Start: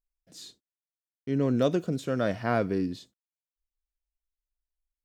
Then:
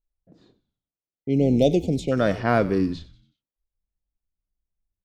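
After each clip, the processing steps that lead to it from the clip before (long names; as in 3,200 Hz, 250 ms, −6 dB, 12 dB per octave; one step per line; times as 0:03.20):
low-pass that shuts in the quiet parts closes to 620 Hz, open at −24 dBFS
echo with shifted repeats 93 ms, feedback 46%, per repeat −100 Hz, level −17 dB
time-frequency box erased 0:01.05–0:02.12, 890–2,000 Hz
level +6 dB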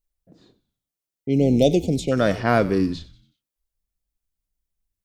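high-shelf EQ 4,600 Hz +7 dB
level +1.5 dB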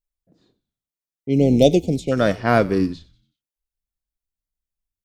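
expander for the loud parts 1.5 to 1, over −35 dBFS
level +4 dB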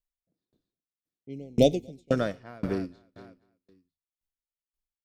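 repeating echo 238 ms, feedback 47%, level −17 dB
tremolo with a ramp in dB decaying 1.9 Hz, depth 34 dB
level −2 dB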